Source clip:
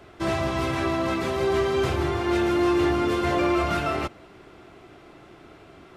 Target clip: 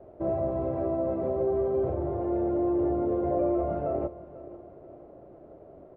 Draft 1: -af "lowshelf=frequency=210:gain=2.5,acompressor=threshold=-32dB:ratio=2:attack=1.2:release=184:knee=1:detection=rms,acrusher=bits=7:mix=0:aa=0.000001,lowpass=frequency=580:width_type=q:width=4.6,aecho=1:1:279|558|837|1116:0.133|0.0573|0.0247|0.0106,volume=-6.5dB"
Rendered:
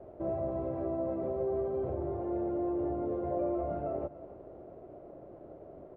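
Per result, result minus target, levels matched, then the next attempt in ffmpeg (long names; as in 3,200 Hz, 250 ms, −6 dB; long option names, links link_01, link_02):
echo 213 ms early; downward compressor: peak gain reduction +5.5 dB
-af "lowshelf=frequency=210:gain=2.5,acompressor=threshold=-32dB:ratio=2:attack=1.2:release=184:knee=1:detection=rms,acrusher=bits=7:mix=0:aa=0.000001,lowpass=frequency=580:width_type=q:width=4.6,aecho=1:1:492|984|1476|1968:0.133|0.0573|0.0247|0.0106,volume=-6.5dB"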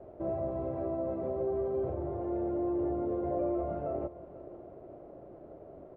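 downward compressor: peak gain reduction +5.5 dB
-af "lowshelf=frequency=210:gain=2.5,acompressor=threshold=-21dB:ratio=2:attack=1.2:release=184:knee=1:detection=rms,acrusher=bits=7:mix=0:aa=0.000001,lowpass=frequency=580:width_type=q:width=4.6,aecho=1:1:492|984|1476|1968:0.133|0.0573|0.0247|0.0106,volume=-6.5dB"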